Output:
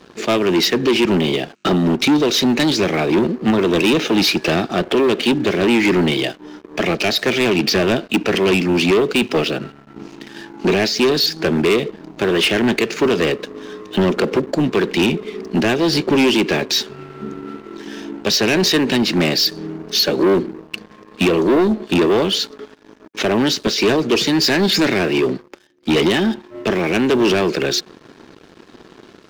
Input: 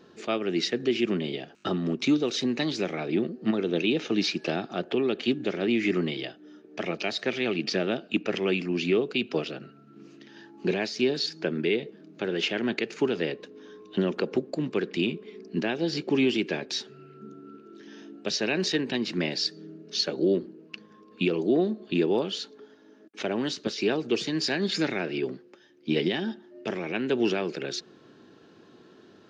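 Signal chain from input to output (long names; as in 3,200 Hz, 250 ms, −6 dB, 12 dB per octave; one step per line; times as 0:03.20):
leveller curve on the samples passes 3
level +4.5 dB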